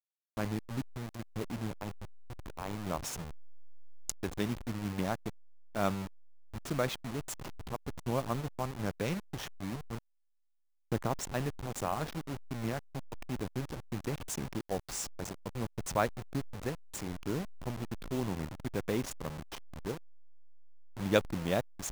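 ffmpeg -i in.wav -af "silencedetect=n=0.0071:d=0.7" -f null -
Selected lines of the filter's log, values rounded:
silence_start: 9.98
silence_end: 10.92 | silence_duration: 0.93
silence_start: 19.97
silence_end: 20.97 | silence_duration: 0.99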